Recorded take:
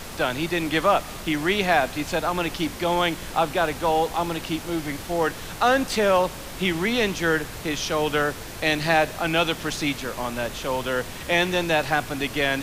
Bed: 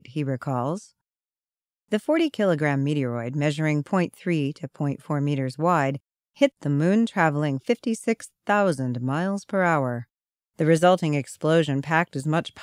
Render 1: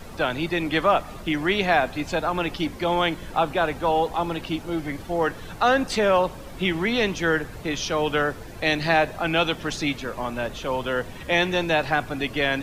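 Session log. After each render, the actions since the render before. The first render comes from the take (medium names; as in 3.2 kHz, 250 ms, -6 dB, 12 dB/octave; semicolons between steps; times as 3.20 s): noise reduction 11 dB, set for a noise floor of -37 dBFS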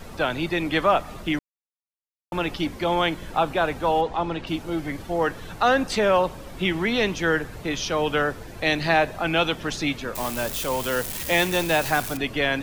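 1.39–2.32 s: mute; 4.01–4.47 s: distance through air 91 m; 10.15–12.17 s: zero-crossing glitches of -21 dBFS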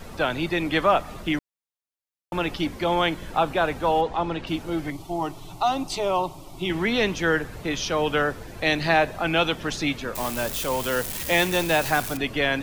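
4.90–6.70 s: static phaser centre 330 Hz, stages 8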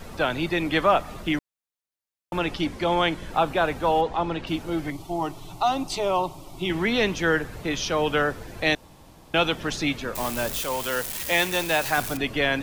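2.39–3.31 s: low-pass 11 kHz; 8.75–9.34 s: room tone; 10.61–11.98 s: bass shelf 480 Hz -6.5 dB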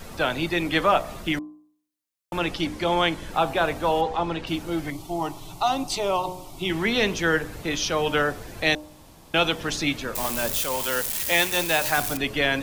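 treble shelf 4.2 kHz +5 dB; de-hum 60.74 Hz, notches 19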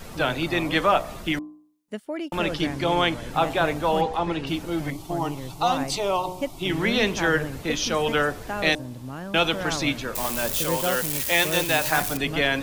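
add bed -10 dB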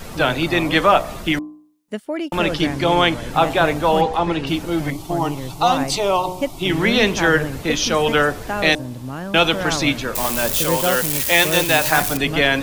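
trim +6 dB; peak limiter -2 dBFS, peak gain reduction 1.5 dB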